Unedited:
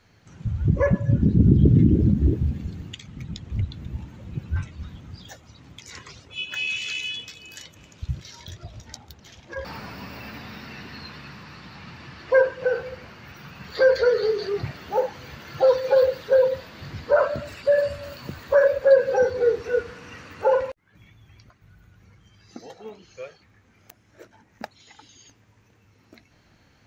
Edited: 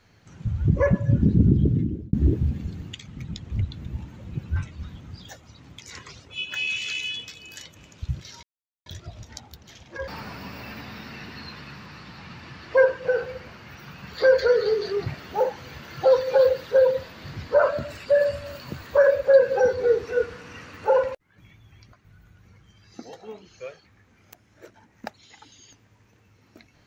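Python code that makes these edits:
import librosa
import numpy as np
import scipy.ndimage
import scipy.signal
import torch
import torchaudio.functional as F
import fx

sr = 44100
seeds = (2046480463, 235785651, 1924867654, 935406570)

y = fx.edit(x, sr, fx.fade_out_span(start_s=1.32, length_s=0.81),
    fx.insert_silence(at_s=8.43, length_s=0.43), tone=tone)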